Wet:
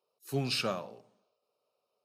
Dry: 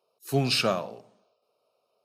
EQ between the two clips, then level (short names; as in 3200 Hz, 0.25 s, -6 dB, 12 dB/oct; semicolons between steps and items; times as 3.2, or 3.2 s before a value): notch 670 Hz, Q 12; -7.0 dB